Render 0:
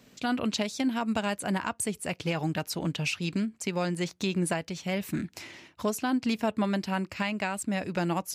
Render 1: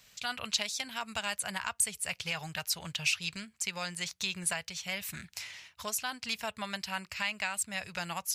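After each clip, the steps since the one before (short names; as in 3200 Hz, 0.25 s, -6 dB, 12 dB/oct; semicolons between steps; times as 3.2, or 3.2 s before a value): passive tone stack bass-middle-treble 10-0-10; gain +4.5 dB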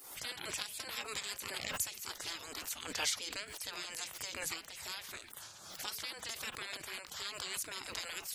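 dynamic EQ 390 Hz, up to +7 dB, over -53 dBFS, Q 0.73; spectral gate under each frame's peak -15 dB weak; backwards sustainer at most 56 dB/s; gain +2 dB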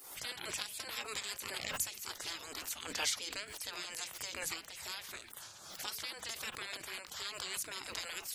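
notches 50/100/150/200/250/300 Hz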